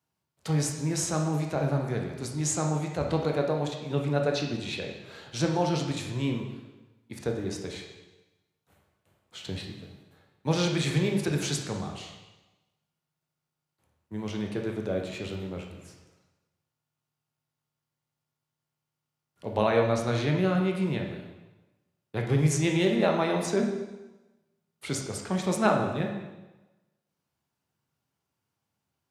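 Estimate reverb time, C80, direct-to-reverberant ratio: 1.1 s, 7.0 dB, 1.5 dB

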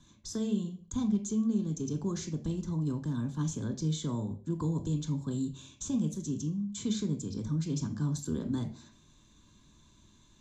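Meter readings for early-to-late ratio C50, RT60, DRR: 13.5 dB, 0.45 s, 8.5 dB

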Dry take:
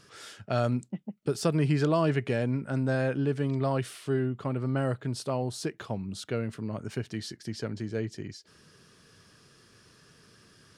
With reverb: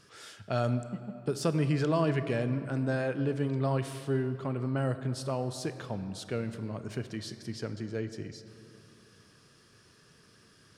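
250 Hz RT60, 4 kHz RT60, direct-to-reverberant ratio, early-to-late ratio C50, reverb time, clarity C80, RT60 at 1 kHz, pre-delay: 2.9 s, 1.7 s, 10.5 dB, 11.0 dB, 2.9 s, 12.0 dB, 2.8 s, 23 ms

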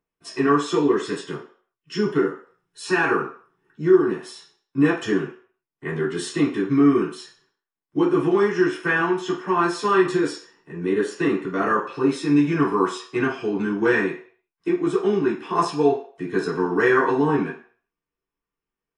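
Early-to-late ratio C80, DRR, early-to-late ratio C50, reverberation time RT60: 12.0 dB, -5.5 dB, 7.0 dB, 0.50 s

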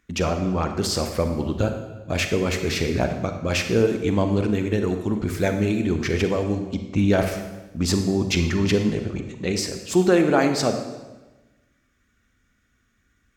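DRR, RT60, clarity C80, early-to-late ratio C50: 6.0 dB, 1.1 s, 9.0 dB, 7.0 dB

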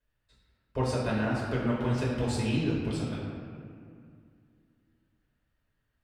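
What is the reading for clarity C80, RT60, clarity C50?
1.5 dB, 2.3 s, 0.0 dB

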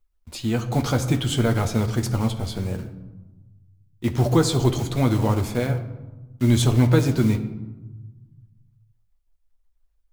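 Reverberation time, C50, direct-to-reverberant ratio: 1.1 s, 11.5 dB, 4.0 dB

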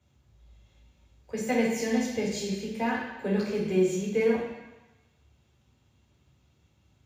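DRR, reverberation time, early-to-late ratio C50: -5.0 dB, 1.1 s, 1.5 dB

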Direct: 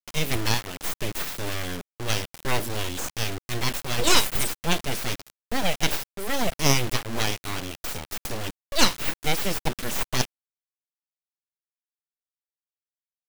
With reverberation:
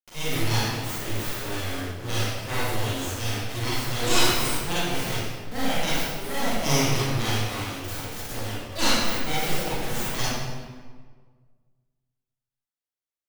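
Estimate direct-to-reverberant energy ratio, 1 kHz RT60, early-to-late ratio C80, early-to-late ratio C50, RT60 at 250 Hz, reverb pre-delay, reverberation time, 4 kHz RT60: -10.0 dB, 1.5 s, -1.0 dB, -4.5 dB, 1.8 s, 33 ms, 1.6 s, 1.1 s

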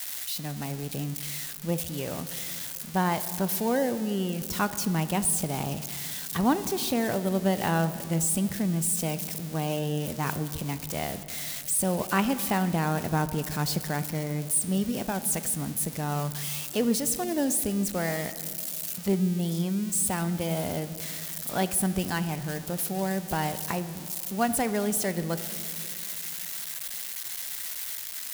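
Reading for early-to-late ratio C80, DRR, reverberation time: 14.0 dB, 12.0 dB, 2.6 s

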